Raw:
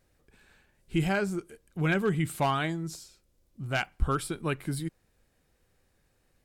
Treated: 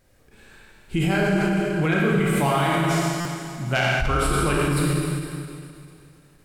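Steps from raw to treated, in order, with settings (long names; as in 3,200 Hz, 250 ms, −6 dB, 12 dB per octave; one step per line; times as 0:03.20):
0:01.19–0:01.84: high-shelf EQ 7,200 Hz −12 dB
four-comb reverb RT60 2.4 s, combs from 28 ms, DRR −4.5 dB
in parallel at −2 dB: compressor whose output falls as the input rises −27 dBFS, ratio −0.5
on the sum: buffer that repeats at 0:03.20, samples 256, times 8
every ending faded ahead of time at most 120 dB per second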